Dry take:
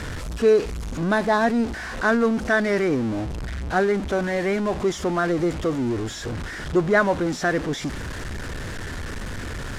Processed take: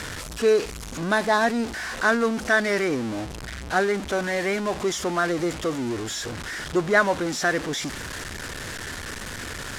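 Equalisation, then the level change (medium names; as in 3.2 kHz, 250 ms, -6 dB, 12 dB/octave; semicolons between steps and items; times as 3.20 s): tilt EQ +2 dB/octave; 0.0 dB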